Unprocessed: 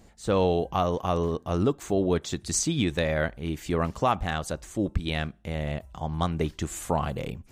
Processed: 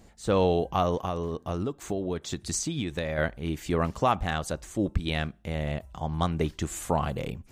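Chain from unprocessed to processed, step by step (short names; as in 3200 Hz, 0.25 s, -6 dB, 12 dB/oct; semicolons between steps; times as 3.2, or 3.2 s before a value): 0.96–3.18 compressor, threshold -27 dBFS, peak gain reduction 8.5 dB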